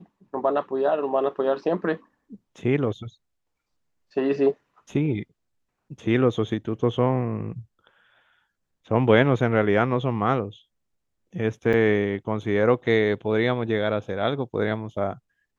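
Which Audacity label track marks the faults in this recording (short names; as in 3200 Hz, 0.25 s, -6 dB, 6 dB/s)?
11.730000	11.740000	gap 6 ms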